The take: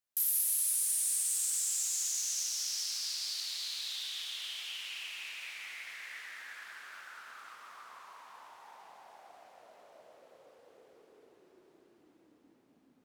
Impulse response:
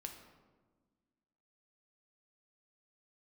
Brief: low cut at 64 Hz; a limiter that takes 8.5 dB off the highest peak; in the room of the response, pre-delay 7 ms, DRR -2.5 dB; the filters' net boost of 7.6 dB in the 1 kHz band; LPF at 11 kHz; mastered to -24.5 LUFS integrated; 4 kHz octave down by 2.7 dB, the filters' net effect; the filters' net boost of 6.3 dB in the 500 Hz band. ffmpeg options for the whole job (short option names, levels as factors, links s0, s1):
-filter_complex "[0:a]highpass=64,lowpass=11000,equalizer=f=500:t=o:g=5,equalizer=f=1000:t=o:g=8.5,equalizer=f=4000:t=o:g=-4,alimiter=level_in=2:limit=0.0631:level=0:latency=1,volume=0.501,asplit=2[s0][s1];[1:a]atrim=start_sample=2205,adelay=7[s2];[s1][s2]afir=irnorm=-1:irlink=0,volume=2[s3];[s0][s3]amix=inputs=2:normalize=0,volume=3.55"